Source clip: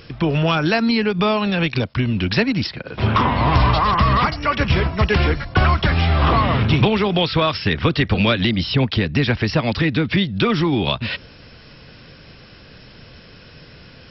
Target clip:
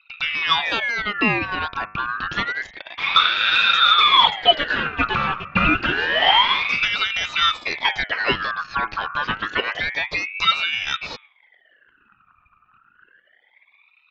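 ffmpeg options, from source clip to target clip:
-af "lowpass=2100,equalizer=f=1200:t=o:w=0.46:g=15,anlmdn=6.31,bandreject=f=102.1:t=h:w=4,bandreject=f=204.2:t=h:w=4,bandreject=f=306.3:t=h:w=4,bandreject=f=408.4:t=h:w=4,bandreject=f=510.5:t=h:w=4,bandreject=f=612.6:t=h:w=4,bandreject=f=714.7:t=h:w=4,bandreject=f=816.8:t=h:w=4,bandreject=f=918.9:t=h:w=4,bandreject=f=1021:t=h:w=4,bandreject=f=1123.1:t=h:w=4,bandreject=f=1225.2:t=h:w=4,bandreject=f=1327.3:t=h:w=4,bandreject=f=1429.4:t=h:w=4,aeval=exprs='val(0)*sin(2*PI*1900*n/s+1900*0.35/0.28*sin(2*PI*0.28*n/s))':c=same,volume=0.668"

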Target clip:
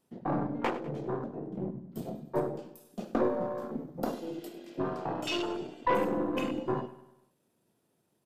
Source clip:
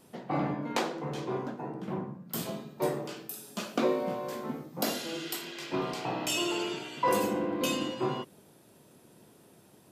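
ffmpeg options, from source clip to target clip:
-af "afwtdn=0.02,atempo=1.2,aeval=exprs='0.168*(cos(1*acos(clip(val(0)/0.168,-1,1)))-cos(1*PI/2))+0.015*(cos(4*acos(clip(val(0)/0.168,-1,1)))-cos(4*PI/2))':c=same,aecho=1:1:99|198|297|396|495:0.168|0.0856|0.0437|0.0223|0.0114"

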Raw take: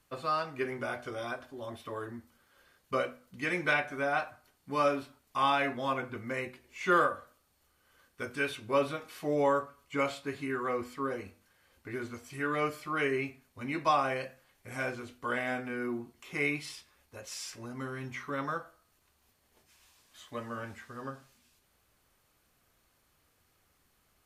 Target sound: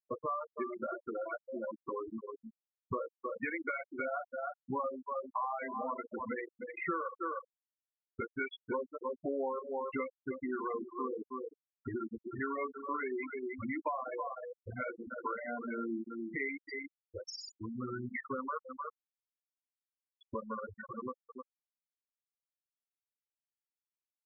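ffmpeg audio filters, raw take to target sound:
-filter_complex "[0:a]asplit=2[s0][s1];[s1]aecho=0:1:309:0.335[s2];[s0][s2]amix=inputs=2:normalize=0,agate=range=0.0224:threshold=0.001:ratio=3:detection=peak,asetrate=41625,aresample=44100,atempo=1.05946,bass=f=250:g=-2,treble=f=4000:g=5,acompressor=mode=upward:threshold=0.0224:ratio=2.5,aeval=exprs='val(0)*gte(abs(val(0)),0.0075)':c=same,adynamicequalizer=threshold=0.00126:dfrequency=150:dqfactor=2.8:tfrequency=150:tqfactor=2.8:attack=5:release=100:ratio=0.375:range=3:mode=cutabove:tftype=bell,acompressor=threshold=0.02:ratio=16,afftfilt=real='re*gte(hypot(re,im),0.0398)':imag='im*gte(hypot(re,im),0.0398)':win_size=1024:overlap=0.75,volume=1.33"

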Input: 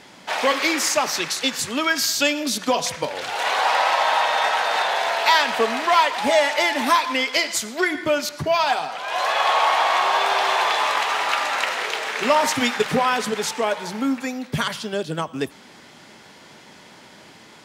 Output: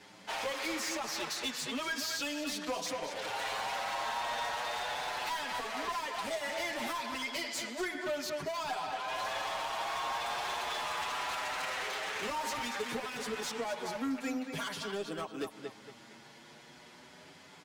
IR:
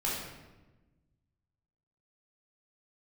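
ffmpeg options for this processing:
-filter_complex "[0:a]asplit=2[s0][s1];[s1]adelay=229,lowpass=f=4000:p=1,volume=0.355,asplit=2[s2][s3];[s3]adelay=229,lowpass=f=4000:p=1,volume=0.35,asplit=2[s4][s5];[s5]adelay=229,lowpass=f=4000:p=1,volume=0.35,asplit=2[s6][s7];[s7]adelay=229,lowpass=f=4000:p=1,volume=0.35[s8];[s2][s4][s6][s8]amix=inputs=4:normalize=0[s9];[s0][s9]amix=inputs=2:normalize=0,acrossover=split=200|5700[s10][s11][s12];[s10]acompressor=threshold=0.00447:ratio=4[s13];[s11]acompressor=threshold=0.0794:ratio=4[s14];[s12]acompressor=threshold=0.0178:ratio=4[s15];[s13][s14][s15]amix=inputs=3:normalize=0,asoftclip=type=hard:threshold=0.0668,asplit=2[s16][s17];[s17]adelay=7.3,afreqshift=0.33[s18];[s16][s18]amix=inputs=2:normalize=1,volume=0.501"

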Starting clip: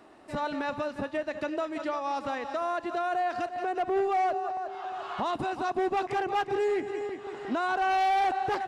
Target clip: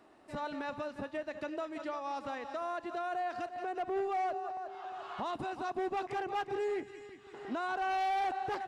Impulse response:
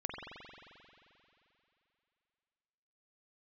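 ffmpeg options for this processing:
-filter_complex "[0:a]asettb=1/sr,asplit=3[s0][s1][s2];[s0]atrim=end=6.834[s3];[s1]atrim=start=6.83:end=7.34,asetpts=PTS-STARTPTS,afade=t=in:d=0.004:c=qsin,afade=t=out:st=0.506:d=0.004:c=qsin,equalizer=f=620:w=0.7:g=-13.5[s4];[s2]atrim=start=7.336[s5];[s3][s4]acrossfade=d=0.004:c1=hsin:c2=qsin[s6];[s6][s5]acrossfade=d=0.004:c1=qsin:c2=hsin,volume=0.447"

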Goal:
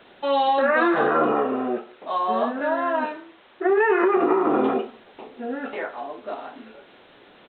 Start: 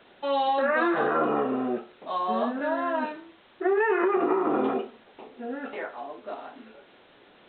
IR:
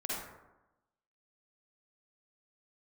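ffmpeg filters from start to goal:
-filter_complex "[0:a]asettb=1/sr,asplit=3[s0][s1][s2];[s0]atrim=end=1.324[s3];[s1]atrim=start=1.32:end=3.7,asetpts=PTS-STARTPTS,afade=t=in:d=0.004:c=qsin,afade=t=out:st=2.376:d=0.004:c=qsin,bass=f=250:g=-7,treble=f=4000:g=-6[s4];[s2]atrim=start=3.696[s5];[s3][s4]acrossfade=d=0.004:c1=hsin:c2=qsin[s6];[s6][s5]acrossfade=d=0.004:c1=qsin:c2=hsin,asplit=2[s7][s8];[s8]adelay=180,highpass=300,lowpass=3400,asoftclip=type=hard:threshold=0.0944,volume=0.0447[s9];[s7][s9]amix=inputs=2:normalize=0,volume=1.68"

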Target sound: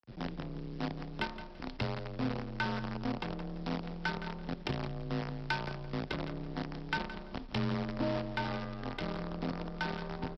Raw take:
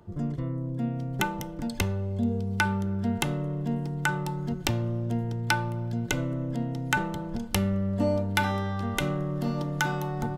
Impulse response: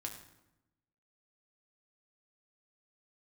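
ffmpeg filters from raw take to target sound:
-af "aresample=11025,acrusher=bits=5:dc=4:mix=0:aa=0.000001,aresample=44100,afreqshift=25,asoftclip=type=tanh:threshold=0.316,aecho=1:1:169|338|507:0.251|0.0553|0.0122,adynamicequalizer=threshold=0.00794:dfrequency=1500:dqfactor=0.7:tfrequency=1500:tqfactor=0.7:attack=5:release=100:ratio=0.375:range=3.5:mode=cutabove:tftype=highshelf,volume=0.398"

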